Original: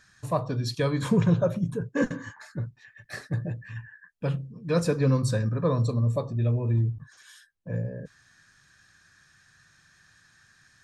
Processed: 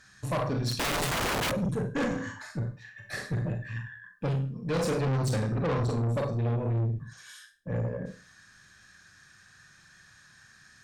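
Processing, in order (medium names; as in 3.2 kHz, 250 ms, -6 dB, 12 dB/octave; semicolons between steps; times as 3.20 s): Schroeder reverb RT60 0.34 s, combs from 30 ms, DRR 3 dB; 0.71–1.52 s: integer overflow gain 22.5 dB; valve stage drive 28 dB, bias 0.4; trim +3 dB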